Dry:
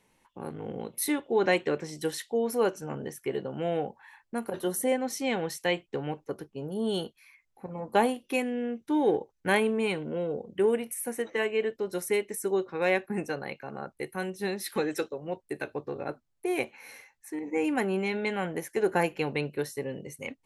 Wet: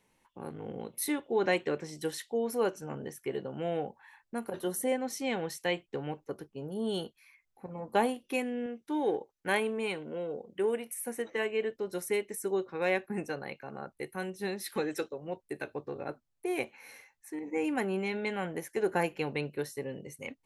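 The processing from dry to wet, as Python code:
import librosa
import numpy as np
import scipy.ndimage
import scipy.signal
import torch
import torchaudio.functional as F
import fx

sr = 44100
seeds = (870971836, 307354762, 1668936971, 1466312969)

y = fx.low_shelf(x, sr, hz=180.0, db=-10.5, at=(8.66, 11.07))
y = F.gain(torch.from_numpy(y), -3.5).numpy()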